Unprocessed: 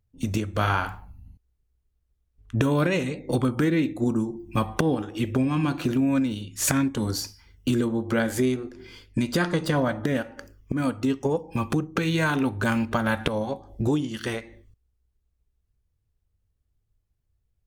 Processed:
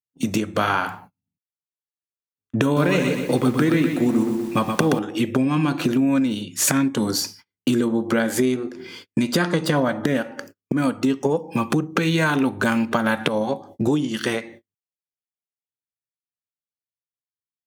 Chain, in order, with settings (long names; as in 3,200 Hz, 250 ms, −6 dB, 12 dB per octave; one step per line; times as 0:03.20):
high-pass filter 140 Hz 24 dB per octave
noise gate −49 dBFS, range −34 dB
downward compressor 2 to 1, threshold −27 dBFS, peak gain reduction 5.5 dB
0:02.64–0:04.99: feedback echo at a low word length 124 ms, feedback 55%, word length 8 bits, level −5.5 dB
level +8 dB